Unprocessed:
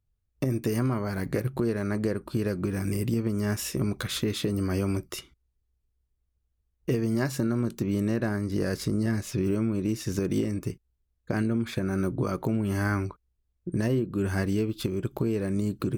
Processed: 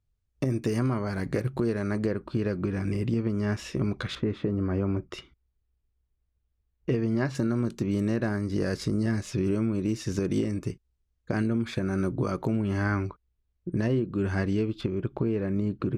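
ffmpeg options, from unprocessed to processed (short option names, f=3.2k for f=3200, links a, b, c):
-af "asetnsamples=n=441:p=0,asendcmd='2.06 lowpass f 4000;4.15 lowpass f 1500;5.11 lowpass f 3600;7.35 lowpass f 7600;12.62 lowpass f 4500;14.81 lowpass f 2600',lowpass=7.8k"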